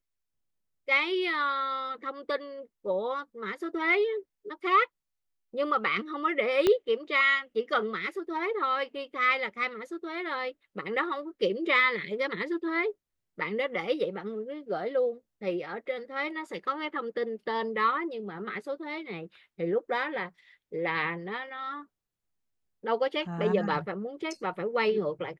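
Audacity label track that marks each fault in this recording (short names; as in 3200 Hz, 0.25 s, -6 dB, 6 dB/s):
6.670000	6.670000	pop -11 dBFS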